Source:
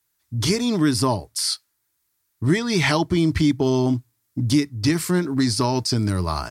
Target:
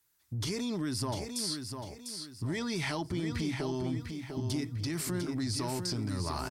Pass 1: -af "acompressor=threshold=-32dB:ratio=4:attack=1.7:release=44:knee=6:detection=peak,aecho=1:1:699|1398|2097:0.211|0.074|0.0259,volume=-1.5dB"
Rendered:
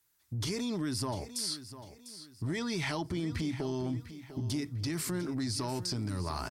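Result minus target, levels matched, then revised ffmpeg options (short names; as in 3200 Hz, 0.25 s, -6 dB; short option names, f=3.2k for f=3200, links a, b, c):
echo-to-direct -7 dB
-af "acompressor=threshold=-32dB:ratio=4:attack=1.7:release=44:knee=6:detection=peak,aecho=1:1:699|1398|2097|2796:0.473|0.166|0.058|0.0203,volume=-1.5dB"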